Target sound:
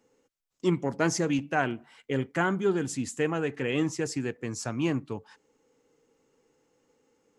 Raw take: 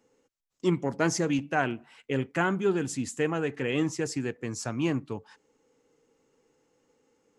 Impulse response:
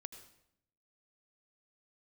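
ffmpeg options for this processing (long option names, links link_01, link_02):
-filter_complex "[0:a]asettb=1/sr,asplit=3[link_01][link_02][link_03];[link_01]atrim=end=1.654[link_04];[link_02]atrim=start=1.65:end=2.87,asetpts=PTS-STARTPTS,afade=type=in:duration=0.004:curve=qsin,afade=type=out:start_time=1.216:duration=0.004:curve=qsin,bandreject=frequency=2600:width=9.8[link_05];[link_03]atrim=start=2.866[link_06];[link_04][link_05]acrossfade=duration=0.004:curve1=hsin:curve2=qsin[link_07];[link_07][link_06]acrossfade=duration=0.004:curve1=qsin:curve2=hsin"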